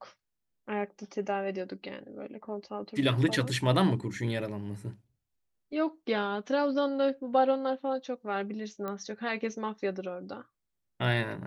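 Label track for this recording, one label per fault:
8.880000	8.880000	pop -23 dBFS

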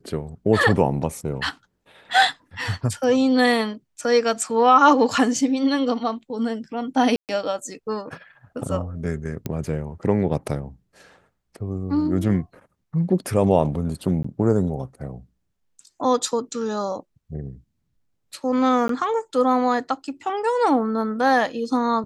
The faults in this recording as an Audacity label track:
7.160000	7.290000	dropout 128 ms
9.460000	9.460000	pop -13 dBFS
14.230000	14.240000	dropout 14 ms
18.880000	18.890000	dropout 13 ms

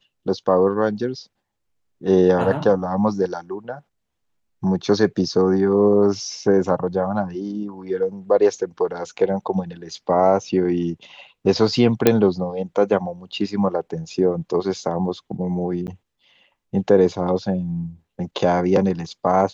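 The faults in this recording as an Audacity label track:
12.070000	12.070000	pop 0 dBFS
15.870000	15.880000	dropout 9.7 ms

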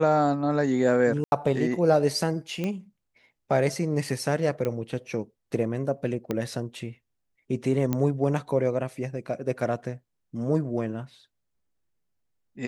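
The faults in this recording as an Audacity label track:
1.240000	1.320000	dropout 81 ms
2.640000	2.640000	pop -17 dBFS
4.650000	4.650000	pop -17 dBFS
6.310000	6.310000	pop -15 dBFS
7.930000	7.930000	pop -13 dBFS

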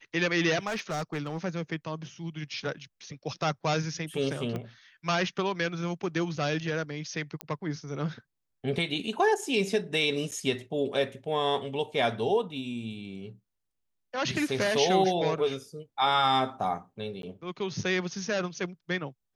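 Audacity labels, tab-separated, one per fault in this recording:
0.660000	1.380000	clipped -27.5 dBFS
4.560000	4.560000	pop -22 dBFS
7.410000	7.410000	pop -17 dBFS
10.310000	10.320000	dropout 8.3 ms
17.220000	17.230000	dropout 12 ms

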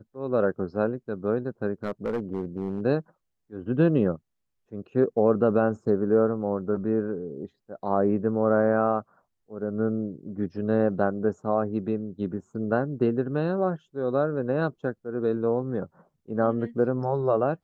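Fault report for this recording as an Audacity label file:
1.840000	2.810000	clipped -23 dBFS

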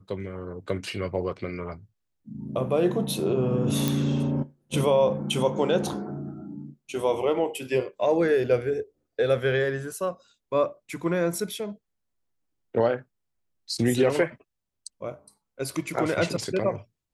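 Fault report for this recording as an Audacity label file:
3.880000	3.880000	pop

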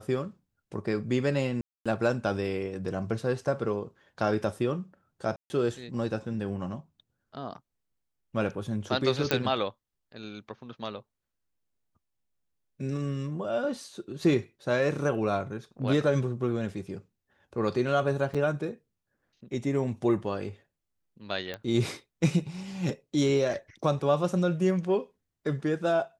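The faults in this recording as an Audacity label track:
1.610000	1.860000	dropout 246 ms
5.360000	5.500000	dropout 140 ms
9.310000	9.310000	pop -10 dBFS
18.340000	18.350000	dropout 6.3 ms
21.540000	21.540000	pop -21 dBFS

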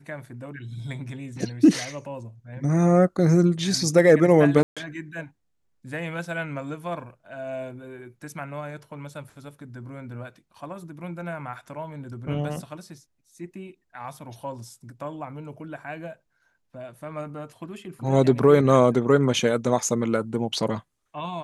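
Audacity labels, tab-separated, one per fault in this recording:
4.630000	4.770000	dropout 136 ms

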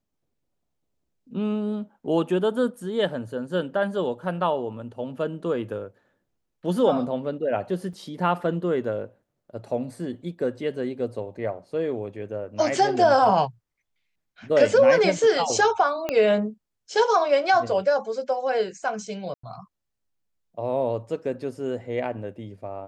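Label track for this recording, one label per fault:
7.930000	7.930000	dropout 4.7 ms
16.090000	16.090000	pop -12 dBFS
19.340000	19.430000	dropout 94 ms

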